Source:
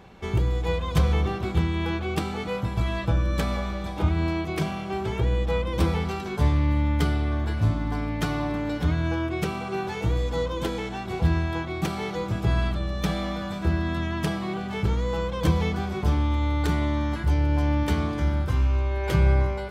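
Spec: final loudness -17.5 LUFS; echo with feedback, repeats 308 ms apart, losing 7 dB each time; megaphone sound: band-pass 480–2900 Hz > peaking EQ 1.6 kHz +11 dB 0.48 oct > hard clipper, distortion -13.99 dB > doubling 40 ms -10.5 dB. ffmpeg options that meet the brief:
-filter_complex "[0:a]highpass=480,lowpass=2900,equalizer=f=1600:t=o:w=0.48:g=11,aecho=1:1:308|616|924|1232|1540:0.447|0.201|0.0905|0.0407|0.0183,asoftclip=type=hard:threshold=0.0473,asplit=2[s0][s1];[s1]adelay=40,volume=0.299[s2];[s0][s2]amix=inputs=2:normalize=0,volume=4.73"

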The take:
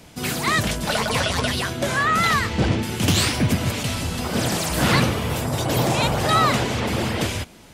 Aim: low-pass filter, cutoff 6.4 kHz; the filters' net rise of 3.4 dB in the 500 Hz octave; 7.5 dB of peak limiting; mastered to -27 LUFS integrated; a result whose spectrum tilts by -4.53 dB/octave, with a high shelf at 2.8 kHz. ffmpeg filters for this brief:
-af "lowpass=6400,equalizer=f=500:t=o:g=4.5,highshelf=f=2800:g=-5.5,volume=0.668,alimiter=limit=0.141:level=0:latency=1"

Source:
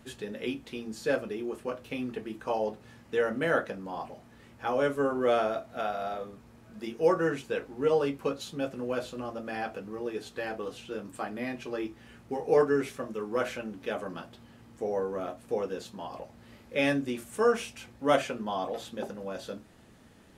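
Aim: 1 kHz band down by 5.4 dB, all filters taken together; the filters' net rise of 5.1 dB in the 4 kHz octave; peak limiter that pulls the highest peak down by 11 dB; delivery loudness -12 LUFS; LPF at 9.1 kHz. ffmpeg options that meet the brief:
-af "lowpass=9100,equalizer=f=1000:t=o:g=-8.5,equalizer=f=4000:t=o:g=7.5,volume=15.8,alimiter=limit=1:level=0:latency=1"

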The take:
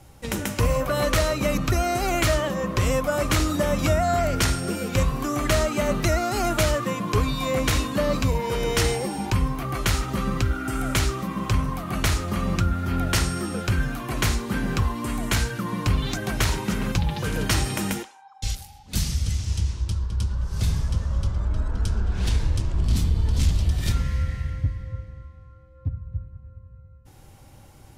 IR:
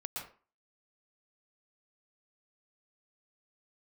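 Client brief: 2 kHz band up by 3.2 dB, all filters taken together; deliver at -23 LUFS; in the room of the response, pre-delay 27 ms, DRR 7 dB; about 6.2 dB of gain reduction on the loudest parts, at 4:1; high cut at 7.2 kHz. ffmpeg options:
-filter_complex "[0:a]lowpass=7200,equalizer=f=2000:t=o:g=4,acompressor=threshold=0.0631:ratio=4,asplit=2[s0][s1];[1:a]atrim=start_sample=2205,adelay=27[s2];[s1][s2]afir=irnorm=-1:irlink=0,volume=0.422[s3];[s0][s3]amix=inputs=2:normalize=0,volume=1.78"

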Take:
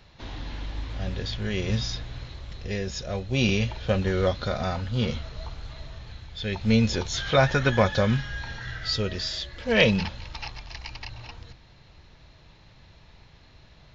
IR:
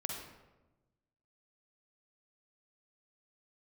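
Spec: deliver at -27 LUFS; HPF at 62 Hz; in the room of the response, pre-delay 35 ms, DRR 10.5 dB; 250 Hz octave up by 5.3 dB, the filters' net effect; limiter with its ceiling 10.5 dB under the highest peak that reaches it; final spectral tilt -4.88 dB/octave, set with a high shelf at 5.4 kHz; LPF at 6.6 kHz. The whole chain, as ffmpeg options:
-filter_complex "[0:a]highpass=62,lowpass=6600,equalizer=f=250:t=o:g=6.5,highshelf=f=5400:g=5,alimiter=limit=0.211:level=0:latency=1,asplit=2[s0][s1];[1:a]atrim=start_sample=2205,adelay=35[s2];[s1][s2]afir=irnorm=-1:irlink=0,volume=0.266[s3];[s0][s3]amix=inputs=2:normalize=0,volume=0.944"

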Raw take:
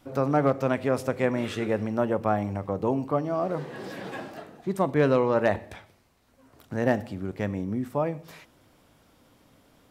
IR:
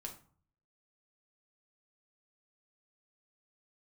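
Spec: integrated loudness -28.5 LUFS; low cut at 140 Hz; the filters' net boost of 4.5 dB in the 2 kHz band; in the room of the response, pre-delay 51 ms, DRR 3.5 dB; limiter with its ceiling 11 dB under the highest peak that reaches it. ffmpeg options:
-filter_complex "[0:a]highpass=140,equalizer=f=2000:t=o:g=5.5,alimiter=limit=0.112:level=0:latency=1,asplit=2[s0][s1];[1:a]atrim=start_sample=2205,adelay=51[s2];[s1][s2]afir=irnorm=-1:irlink=0,volume=0.944[s3];[s0][s3]amix=inputs=2:normalize=0,volume=1.12"

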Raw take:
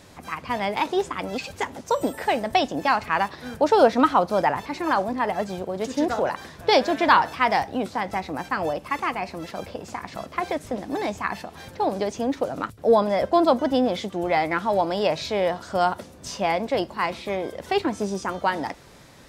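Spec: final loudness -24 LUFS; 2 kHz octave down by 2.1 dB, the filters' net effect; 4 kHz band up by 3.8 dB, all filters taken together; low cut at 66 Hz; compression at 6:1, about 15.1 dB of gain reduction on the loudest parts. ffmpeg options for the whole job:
-af "highpass=66,equalizer=f=2000:t=o:g=-4,equalizer=f=4000:t=o:g=6,acompressor=threshold=0.0355:ratio=6,volume=2.99"

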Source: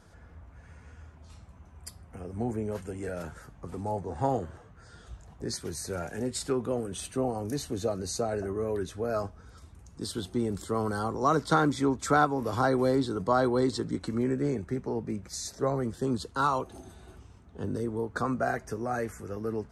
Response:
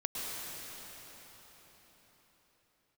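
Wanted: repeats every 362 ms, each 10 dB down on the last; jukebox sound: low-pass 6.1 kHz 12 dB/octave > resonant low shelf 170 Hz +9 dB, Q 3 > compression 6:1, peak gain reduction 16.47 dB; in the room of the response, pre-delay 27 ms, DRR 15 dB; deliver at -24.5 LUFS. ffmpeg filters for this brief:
-filter_complex "[0:a]aecho=1:1:362|724|1086|1448:0.316|0.101|0.0324|0.0104,asplit=2[s0][s1];[1:a]atrim=start_sample=2205,adelay=27[s2];[s1][s2]afir=irnorm=-1:irlink=0,volume=0.106[s3];[s0][s3]amix=inputs=2:normalize=0,lowpass=6100,lowshelf=f=170:t=q:w=3:g=9,acompressor=threshold=0.0224:ratio=6,volume=4.22"

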